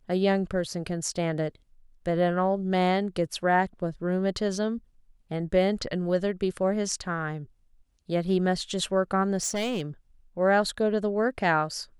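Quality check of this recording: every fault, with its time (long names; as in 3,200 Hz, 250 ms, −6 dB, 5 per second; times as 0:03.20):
0:09.37–0:09.82: clipping −24.5 dBFS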